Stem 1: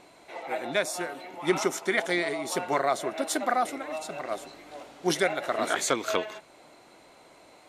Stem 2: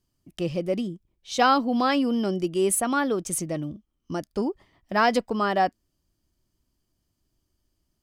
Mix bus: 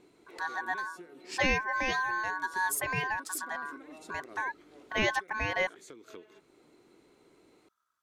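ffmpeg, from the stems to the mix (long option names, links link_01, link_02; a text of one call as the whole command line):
ffmpeg -i stem1.wav -i stem2.wav -filter_complex "[0:a]lowshelf=frequency=500:width_type=q:width=3:gain=6.5,acompressor=threshold=-30dB:ratio=5,volume=-12dB[link_01];[1:a]aeval=exprs='val(0)*sin(2*PI*1300*n/s)':channel_layout=same,volume=-5dB,asplit=2[link_02][link_03];[link_03]apad=whole_len=338914[link_04];[link_01][link_04]sidechaincompress=threshold=-31dB:ratio=6:attack=7.8:release=1310[link_05];[link_05][link_02]amix=inputs=2:normalize=0" out.wav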